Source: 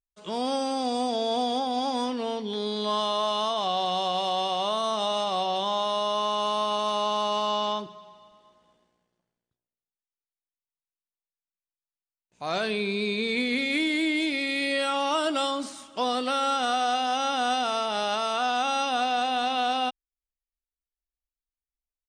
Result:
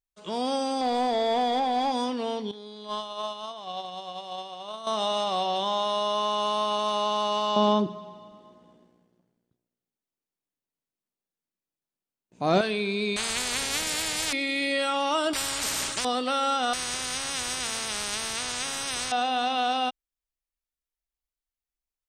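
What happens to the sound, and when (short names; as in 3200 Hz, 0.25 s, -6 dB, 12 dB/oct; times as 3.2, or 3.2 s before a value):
0.81–1.92 overdrive pedal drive 15 dB, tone 1700 Hz, clips at -17 dBFS
2.51–4.87 gate -26 dBFS, range -13 dB
7.56–12.61 bell 240 Hz +14.5 dB 2.7 oct
13.16–14.33 spectral compressor 10:1
15.33–16.05 spectral compressor 10:1
16.73–19.12 spectral compressor 10:1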